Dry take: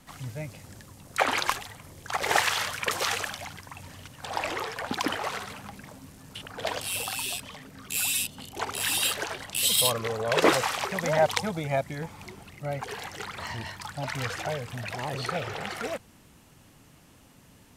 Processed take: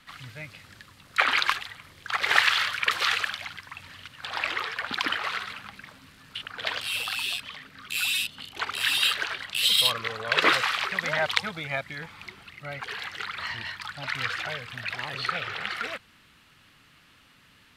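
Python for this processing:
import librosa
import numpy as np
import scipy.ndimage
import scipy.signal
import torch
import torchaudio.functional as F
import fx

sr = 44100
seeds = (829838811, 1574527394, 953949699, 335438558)

y = fx.band_shelf(x, sr, hz=2300.0, db=13.0, octaves=2.3)
y = y * 10.0 ** (-7.5 / 20.0)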